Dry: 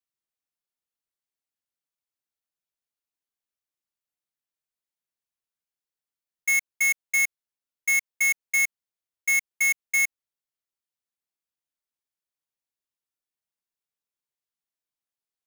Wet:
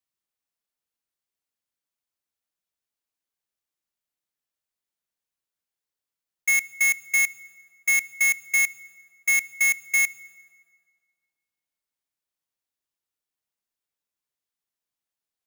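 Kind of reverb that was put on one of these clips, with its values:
feedback delay network reverb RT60 2.1 s, low-frequency decay 0.85×, high-frequency decay 0.65×, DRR 17.5 dB
level +2 dB

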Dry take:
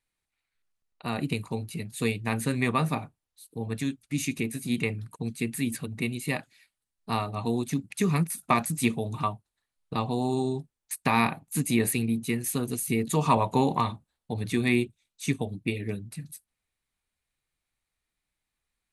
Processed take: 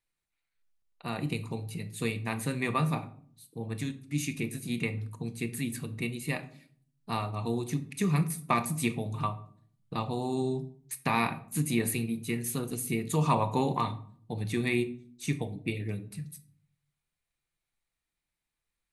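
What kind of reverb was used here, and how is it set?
rectangular room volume 660 cubic metres, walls furnished, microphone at 0.79 metres
level −4 dB

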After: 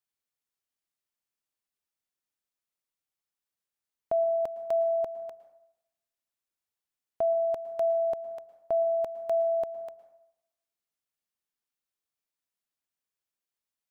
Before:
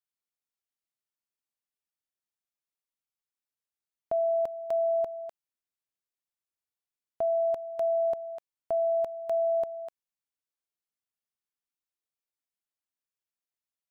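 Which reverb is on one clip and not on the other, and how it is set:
dense smooth reverb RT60 0.84 s, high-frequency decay 0.55×, pre-delay 100 ms, DRR 13.5 dB
level +1.5 dB

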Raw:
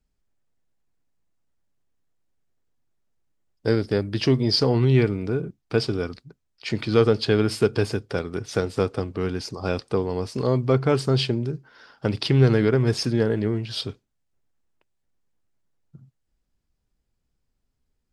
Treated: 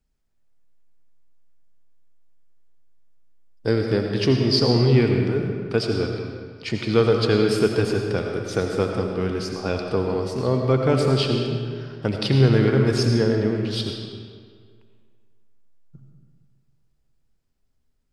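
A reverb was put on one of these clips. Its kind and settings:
comb and all-pass reverb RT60 1.9 s, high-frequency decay 0.75×, pre-delay 45 ms, DRR 2.5 dB

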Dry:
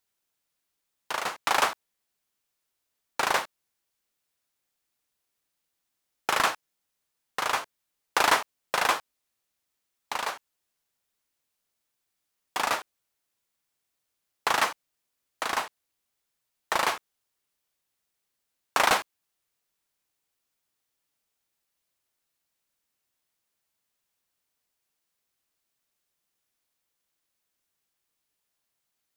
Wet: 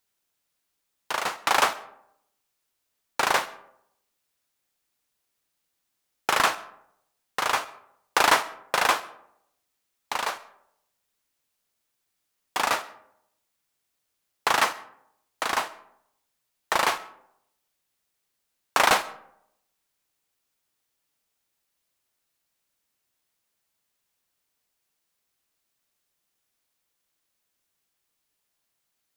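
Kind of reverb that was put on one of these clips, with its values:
comb and all-pass reverb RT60 0.77 s, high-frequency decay 0.45×, pre-delay 65 ms, DRR 18.5 dB
level +2.5 dB

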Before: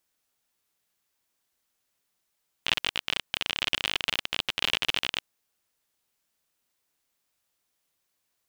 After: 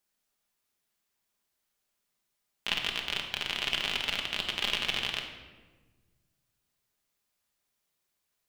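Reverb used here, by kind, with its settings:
rectangular room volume 990 cubic metres, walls mixed, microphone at 1.3 metres
level −4.5 dB

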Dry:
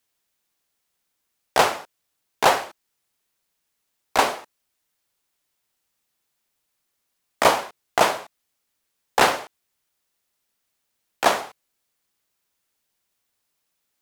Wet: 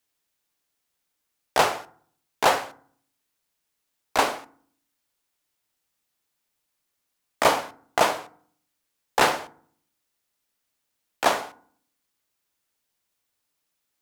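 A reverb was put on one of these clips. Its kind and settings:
feedback delay network reverb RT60 0.56 s, low-frequency decay 1.4×, high-frequency decay 0.5×, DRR 13.5 dB
level −2.5 dB

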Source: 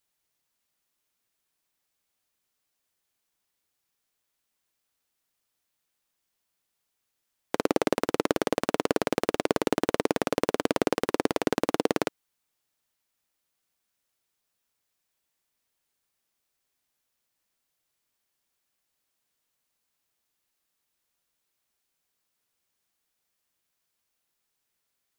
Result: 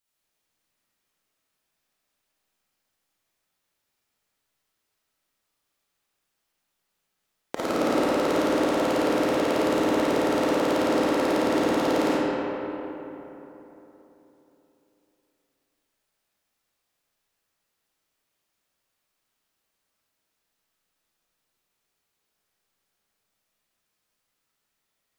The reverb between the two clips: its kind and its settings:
comb and all-pass reverb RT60 3.6 s, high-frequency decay 0.5×, pre-delay 10 ms, DRR −9.5 dB
level −5 dB

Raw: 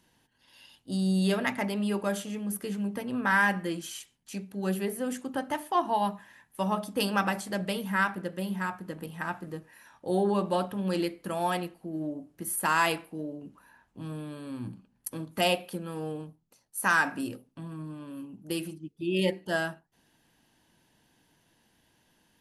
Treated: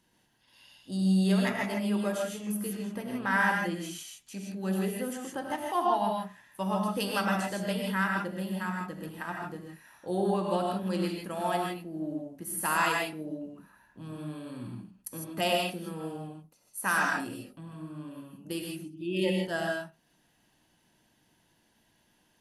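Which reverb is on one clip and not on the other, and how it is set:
reverb whose tail is shaped and stops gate 180 ms rising, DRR 0 dB
level −4 dB

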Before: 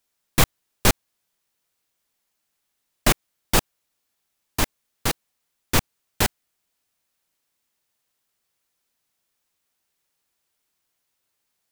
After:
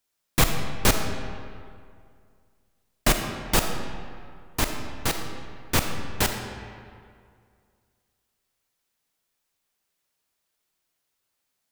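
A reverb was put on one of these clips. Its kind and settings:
comb and all-pass reverb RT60 2.2 s, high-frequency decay 0.65×, pre-delay 5 ms, DRR 4.5 dB
level −2.5 dB

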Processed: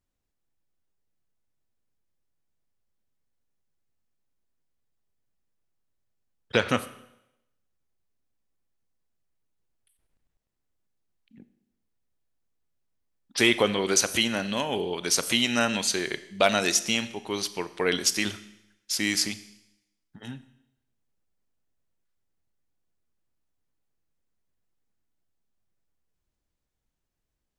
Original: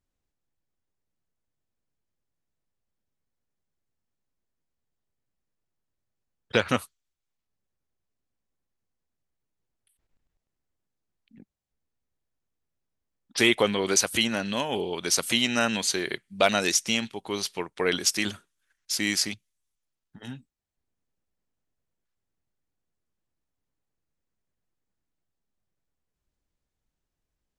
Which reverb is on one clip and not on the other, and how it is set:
four-comb reverb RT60 0.85 s, combs from 26 ms, DRR 13.5 dB

